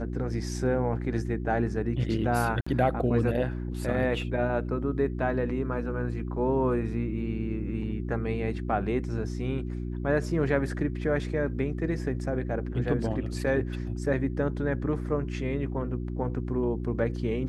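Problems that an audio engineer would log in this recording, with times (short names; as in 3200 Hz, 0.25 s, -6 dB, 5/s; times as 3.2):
hum 60 Hz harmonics 6 -33 dBFS
2.61–2.67 gap 55 ms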